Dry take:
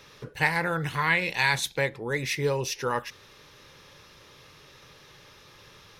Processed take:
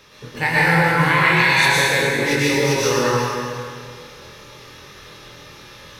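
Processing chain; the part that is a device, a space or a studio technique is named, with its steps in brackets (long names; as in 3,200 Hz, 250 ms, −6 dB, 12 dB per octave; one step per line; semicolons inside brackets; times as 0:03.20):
tunnel (flutter between parallel walls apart 4.2 metres, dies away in 0.25 s; convolution reverb RT60 2.3 s, pre-delay 105 ms, DRR −7.5 dB)
level +1.5 dB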